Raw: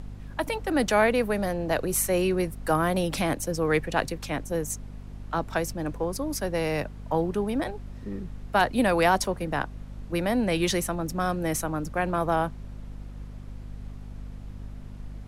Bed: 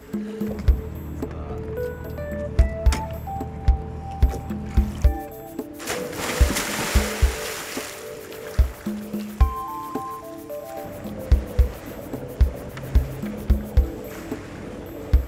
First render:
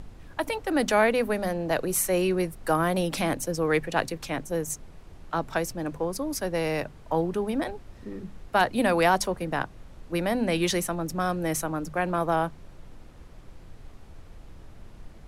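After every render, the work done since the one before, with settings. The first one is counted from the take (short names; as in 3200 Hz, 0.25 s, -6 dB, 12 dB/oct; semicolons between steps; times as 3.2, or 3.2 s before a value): notches 50/100/150/200/250 Hz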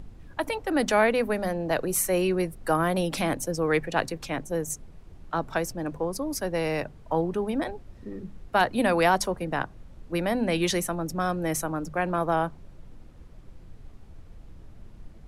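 denoiser 6 dB, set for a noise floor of -48 dBFS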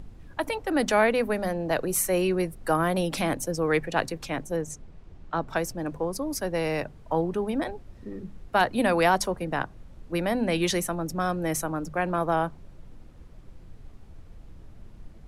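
4.56–5.49 air absorption 62 m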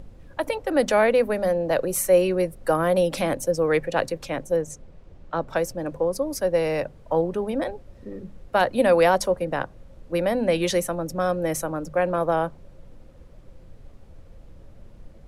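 bell 540 Hz +11 dB 0.31 oct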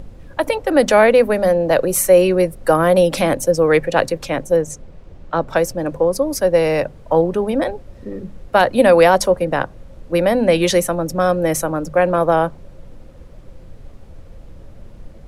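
gain +7.5 dB; limiter -2 dBFS, peak gain reduction 2 dB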